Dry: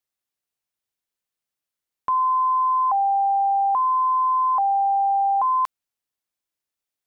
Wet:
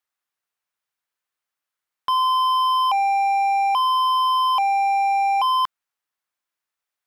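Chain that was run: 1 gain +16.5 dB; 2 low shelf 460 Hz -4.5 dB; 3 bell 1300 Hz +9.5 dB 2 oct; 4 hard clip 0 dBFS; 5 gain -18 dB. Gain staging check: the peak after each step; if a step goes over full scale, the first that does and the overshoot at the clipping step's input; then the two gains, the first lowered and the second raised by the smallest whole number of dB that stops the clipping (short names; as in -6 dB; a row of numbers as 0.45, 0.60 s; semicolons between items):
-0.5, -1.0, +7.5, 0.0, -18.0 dBFS; step 3, 7.5 dB; step 1 +8.5 dB, step 5 -10 dB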